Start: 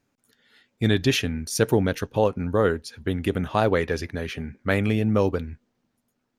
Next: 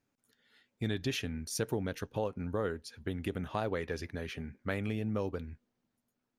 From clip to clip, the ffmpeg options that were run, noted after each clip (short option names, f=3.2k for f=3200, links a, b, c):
-af "acompressor=threshold=-24dB:ratio=2,volume=-8.5dB"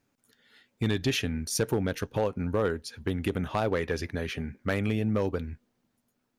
-af "volume=24.5dB,asoftclip=hard,volume=-24.5dB,volume=7dB"